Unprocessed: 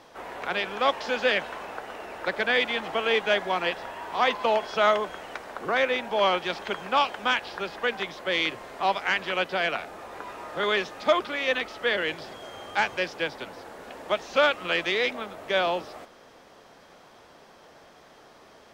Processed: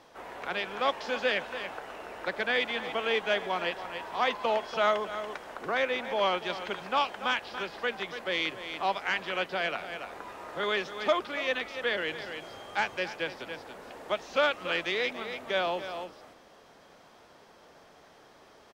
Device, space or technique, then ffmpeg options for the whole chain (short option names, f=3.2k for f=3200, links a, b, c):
ducked delay: -filter_complex "[0:a]asplit=3[a][b][c];[b]adelay=284,volume=-6.5dB[d];[c]apad=whole_len=838530[e];[d][e]sidechaincompress=threshold=-31dB:ratio=8:attack=12:release=341[f];[a][f]amix=inputs=2:normalize=0,volume=-4.5dB"